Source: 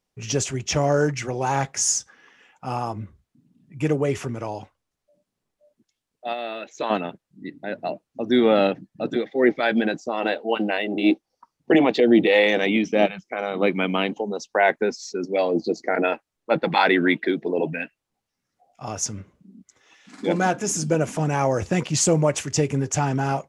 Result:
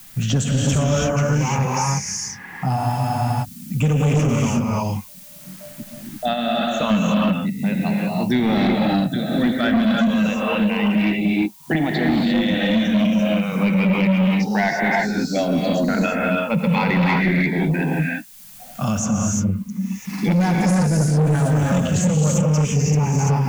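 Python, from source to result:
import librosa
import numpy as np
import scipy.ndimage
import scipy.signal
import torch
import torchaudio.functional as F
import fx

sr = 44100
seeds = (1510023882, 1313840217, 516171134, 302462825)

y = fx.spec_ripple(x, sr, per_octave=0.81, drift_hz=-0.33, depth_db=10)
y = fx.rider(y, sr, range_db=10, speed_s=2.0)
y = fx.dmg_noise_colour(y, sr, seeds[0], colour='blue', level_db=-55.0)
y = fx.low_shelf_res(y, sr, hz=270.0, db=11.0, q=3.0)
y = fx.rev_gated(y, sr, seeds[1], gate_ms=370, shape='rising', drr_db=-3.0)
y = 10.0 ** (-4.0 / 20.0) * np.tanh(y / 10.0 ** (-4.0 / 20.0))
y = fx.peak_eq(y, sr, hz=150.0, db=-6.0, octaves=2.0)
y = fx.spec_freeze(y, sr, seeds[2], at_s=2.78, hold_s=0.65)
y = fx.band_squash(y, sr, depth_pct=70)
y = y * librosa.db_to_amplitude(-3.5)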